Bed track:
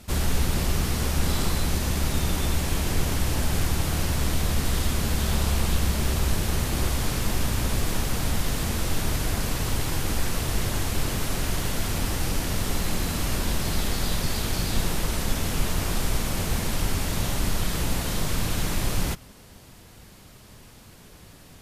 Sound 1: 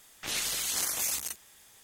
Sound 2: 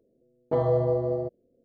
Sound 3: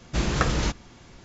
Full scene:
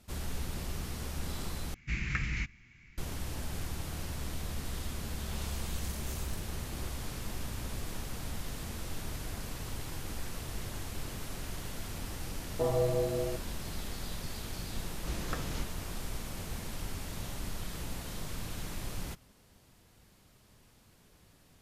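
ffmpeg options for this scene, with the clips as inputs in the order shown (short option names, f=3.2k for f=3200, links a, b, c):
-filter_complex "[3:a]asplit=2[a][b];[0:a]volume=-13.5dB[c];[a]firequalizer=gain_entry='entry(120,0);entry(360,-13);entry(550,-24);entry(2200,12);entry(3300,-8)':delay=0.05:min_phase=1[d];[c]asplit=2[e][f];[e]atrim=end=1.744[g];[d]atrim=end=1.24,asetpts=PTS-STARTPTS,volume=-8.5dB[h];[f]atrim=start=2.976[i];[1:a]atrim=end=1.83,asetpts=PTS-STARTPTS,volume=-17.5dB,afade=t=in:d=0.004:c=hsin,afade=t=out:st=1.826:d=0.004:c=hsin,adelay=5070[j];[2:a]atrim=end=1.64,asetpts=PTS-STARTPTS,volume=-6dB,afade=t=in:d=0.004:c=hsin,afade=t=out:st=1.636:d=0.004:c=hsin,adelay=12080[k];[b]atrim=end=1.24,asetpts=PTS-STARTPTS,volume=-15dB,afade=t=in:d=0.004:c=hsin,afade=t=out:st=1.236:d=0.004:c=hsin,adelay=657972S[l];[g][h]acrossfade=d=0.004:c1=hsin:c2=hsin[m];[m][i]acrossfade=d=0.004:c1=hsin:c2=hsin[n];[n][j][k][l]amix=inputs=4:normalize=0"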